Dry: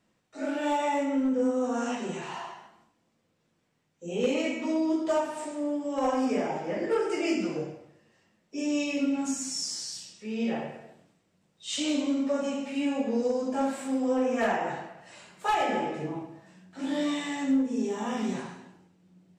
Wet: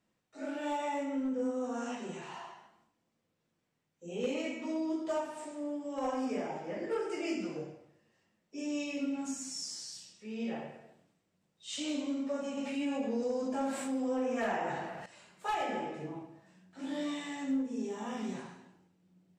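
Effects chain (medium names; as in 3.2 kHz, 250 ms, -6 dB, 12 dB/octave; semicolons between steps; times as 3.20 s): 12.57–15.06 s: level flattener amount 50%; trim -7.5 dB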